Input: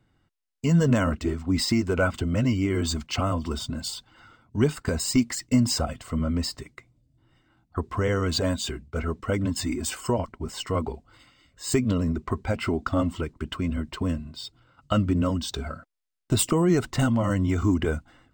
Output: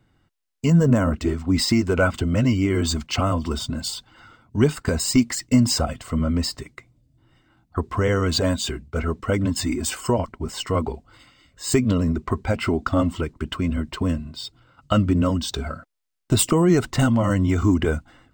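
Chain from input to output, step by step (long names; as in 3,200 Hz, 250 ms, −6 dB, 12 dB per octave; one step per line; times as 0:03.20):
0:00.70–0:01.14: parametric band 3,400 Hz −11 dB 1.9 octaves
level +4 dB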